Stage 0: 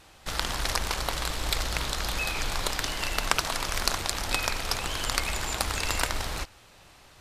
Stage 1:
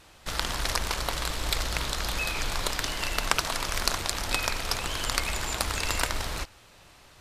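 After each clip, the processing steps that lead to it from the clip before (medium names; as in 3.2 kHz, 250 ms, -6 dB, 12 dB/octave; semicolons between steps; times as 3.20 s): band-stop 790 Hz, Q 23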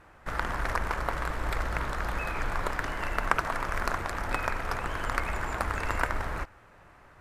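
resonant high shelf 2.5 kHz -14 dB, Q 1.5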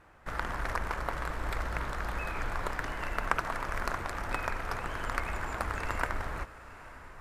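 echo that smears into a reverb 909 ms, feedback 47%, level -16 dB; trim -3.5 dB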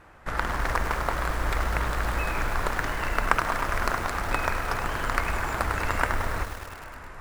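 bit-crushed delay 103 ms, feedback 80%, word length 7-bit, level -10 dB; trim +6.5 dB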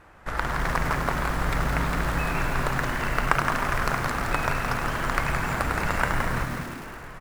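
frequency-shifting echo 168 ms, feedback 42%, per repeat +110 Hz, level -6 dB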